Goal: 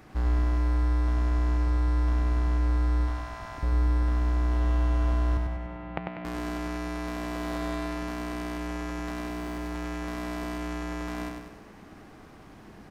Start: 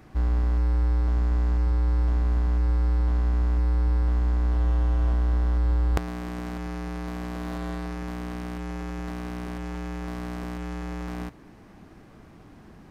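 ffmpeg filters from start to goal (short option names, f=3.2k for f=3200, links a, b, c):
-filter_complex "[0:a]lowshelf=f=330:g=-5.5,asettb=1/sr,asplit=3[a][b][c];[a]atrim=end=3.044[d];[b]atrim=start=3.04:end=3.63,asetpts=PTS-STARTPTS,afade=t=in:d=0.004:c=qsin,afade=t=out:st=0.586:d=0.004:c=qsin,bandreject=f=60:t=h:w=6,bandreject=f=120:t=h:w=6,bandreject=f=180:t=h:w=6,bandreject=f=240:t=h:w=6,bandreject=f=300:t=h:w=6,bandreject=f=360:t=h:w=6,bandreject=f=420:t=h:w=6,bandreject=f=480:t=h:w=6,bandreject=f=540:t=h:w=6[e];[c]atrim=start=3.626[f];[d][e]acrossfade=d=0.004:c1=hsin:c2=qsin[g];[g][f]acrossfade=d=0.004:c1=qsin:c2=hsin,asettb=1/sr,asplit=3[h][i][j];[h]atrim=end=5.374[k];[i]atrim=start=5.37:end=6.25,asetpts=PTS-STARTPTS,afade=t=in:d=0.004:c=qsin,afade=t=out:st=0.876:d=0.004:c=qsin,highpass=170,equalizer=f=180:t=q:w=4:g=6,equalizer=f=270:t=q:w=4:g=-10,equalizer=f=430:t=q:w=4:g=-10,equalizer=f=1.1k:t=q:w=4:g=-8,equalizer=f=1.6k:t=q:w=4:g=-8,lowpass=f=2.5k:w=0.5412,lowpass=f=2.5k:w=1.3066[l];[j]atrim=start=6.246[m];[k][l]acrossfade=d=0.004:c1=hsin:c2=qsin[n];[n][m]acrossfade=d=0.004:c1=qsin:c2=hsin,asettb=1/sr,asplit=3[o][p][q];[o]atrim=end=9.264[r];[p]atrim=start=9.26:end=9.76,asetpts=PTS-STARTPTS,afade=t=in:d=0.004:c=qsin,afade=t=out:st=0.496:d=0.004:c=qsin,volume=28.5dB,asoftclip=hard,volume=-28.5dB[s];[q]atrim=start=9.756[t];[r][s]acrossfade=d=0.004:c1=hsin:c2=qsin[u];[u][t]acrossfade=d=0.004:c1=qsin:c2=hsin,asplit=2[v][w];[w]aecho=0:1:97|194|291|388|485|582|679:0.596|0.304|0.155|0.079|0.0403|0.0206|0.0105[x];[v][x]amix=inputs=2:normalize=0,volume=2dB"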